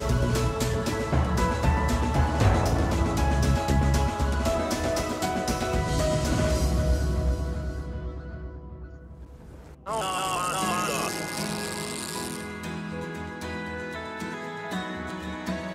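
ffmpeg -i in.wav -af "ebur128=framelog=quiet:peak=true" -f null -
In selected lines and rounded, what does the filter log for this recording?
Integrated loudness:
  I:         -27.3 LUFS
  Threshold: -37.7 LUFS
Loudness range:
  LRA:         8.9 LU
  Threshold: -47.7 LUFS
  LRA low:   -33.5 LUFS
  LRA high:  -24.6 LUFS
True peak:
  Peak:      -10.0 dBFS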